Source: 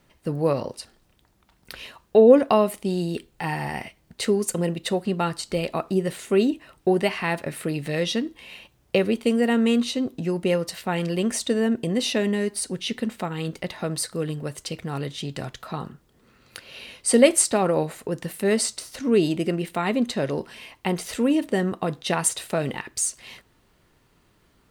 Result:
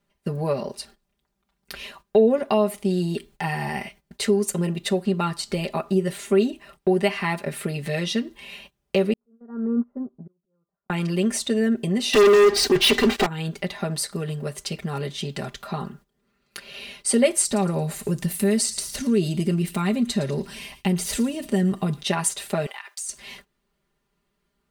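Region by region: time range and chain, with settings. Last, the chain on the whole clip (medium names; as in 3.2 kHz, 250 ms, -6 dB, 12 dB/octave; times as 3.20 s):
9.13–10.90 s: steep low-pass 1.4 kHz 48 dB/octave + slow attack 583 ms + upward expansion 2.5:1, over -32 dBFS
12.13–13.26 s: low-pass 5.5 kHz 24 dB/octave + comb 2.6 ms, depth 97% + waveshaping leveller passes 5
17.45–22.03 s: tone controls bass +10 dB, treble +7 dB + compression 1.5:1, threshold -25 dBFS + feedback echo behind a high-pass 112 ms, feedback 36%, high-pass 2.4 kHz, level -14 dB
22.66–23.09 s: high-pass 710 Hz 24 dB/octave + compression 3:1, threshold -35 dBFS
whole clip: gate -49 dBFS, range -15 dB; compression 1.5:1, threshold -27 dBFS; comb 5 ms, depth 89%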